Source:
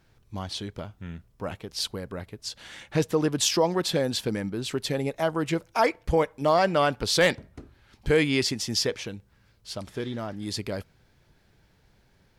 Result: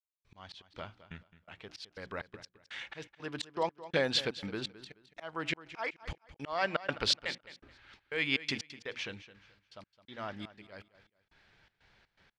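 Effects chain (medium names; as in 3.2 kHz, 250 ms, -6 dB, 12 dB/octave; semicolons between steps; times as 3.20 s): low-pass 2.9 kHz 12 dB/octave; tilt shelf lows -9 dB, about 930 Hz; hum notches 60/120/180/240/300/360 Hz; slow attack 413 ms; trance gate "..xxx.xx.x" 122 bpm -60 dB; on a send: feedback delay 214 ms, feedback 26%, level -15.5 dB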